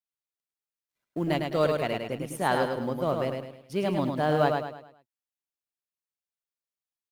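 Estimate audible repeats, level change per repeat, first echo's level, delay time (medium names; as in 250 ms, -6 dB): 4, -8.0 dB, -4.5 dB, 105 ms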